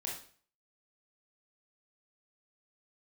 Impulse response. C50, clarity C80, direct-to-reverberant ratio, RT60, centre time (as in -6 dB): 4.0 dB, 9.5 dB, -3.5 dB, 0.45 s, 38 ms